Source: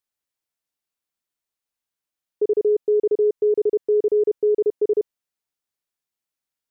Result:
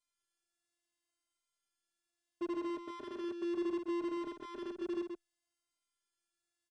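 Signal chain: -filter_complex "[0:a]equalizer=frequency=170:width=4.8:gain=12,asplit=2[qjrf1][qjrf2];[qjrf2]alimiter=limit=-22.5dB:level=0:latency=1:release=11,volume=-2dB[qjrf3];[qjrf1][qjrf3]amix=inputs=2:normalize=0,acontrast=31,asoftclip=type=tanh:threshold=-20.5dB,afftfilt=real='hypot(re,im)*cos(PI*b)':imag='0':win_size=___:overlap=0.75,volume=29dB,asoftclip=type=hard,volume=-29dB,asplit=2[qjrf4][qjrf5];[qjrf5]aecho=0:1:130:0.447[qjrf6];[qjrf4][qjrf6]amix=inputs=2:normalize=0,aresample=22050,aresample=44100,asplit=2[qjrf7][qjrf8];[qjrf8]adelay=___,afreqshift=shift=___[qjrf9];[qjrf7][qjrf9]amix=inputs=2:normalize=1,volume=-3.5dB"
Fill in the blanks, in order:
512, 4.5, -0.68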